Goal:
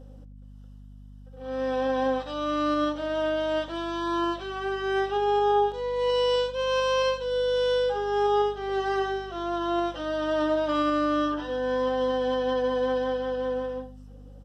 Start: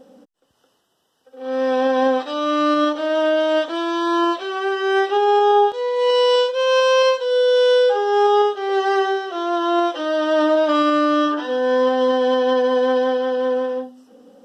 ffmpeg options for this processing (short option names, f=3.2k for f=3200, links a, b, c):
-filter_complex "[0:a]asplit=2[a][b];[b]adelay=87.46,volume=-17dB,highshelf=f=4k:g=-1.97[c];[a][c]amix=inputs=2:normalize=0,aeval=exprs='val(0)+0.0158*(sin(2*PI*50*n/s)+sin(2*PI*2*50*n/s)/2+sin(2*PI*3*50*n/s)/3+sin(2*PI*4*50*n/s)/4+sin(2*PI*5*50*n/s)/5)':c=same,volume=-8.5dB"